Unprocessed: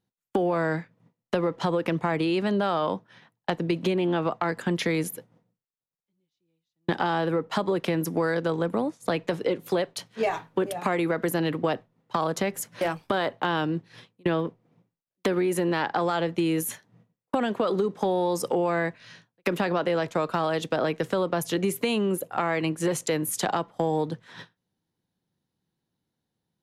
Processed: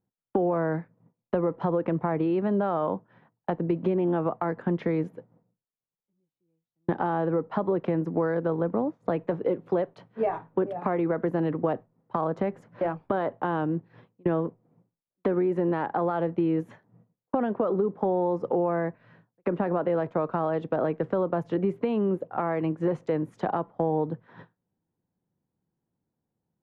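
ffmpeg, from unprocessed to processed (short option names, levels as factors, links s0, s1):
-filter_complex "[0:a]asettb=1/sr,asplit=3[s0][s1][s2];[s0]atrim=end=17.524[s3];[s1]atrim=start=17.52:end=19.85,asetpts=PTS-STARTPTS,afade=t=in:d=0.004:c=qsin,afade=t=out:st=2.326:d=0.004:c=qsin,equalizer=f=12000:w=0.31:g=-9.5[s4];[s2]atrim=start=19.846[s5];[s3][s4]acrossfade=d=0.004:c1=hsin:c2=qsin[s6];[s6][s5]acrossfade=d=0.004:c1=qsin:c2=hsin,lowpass=1100"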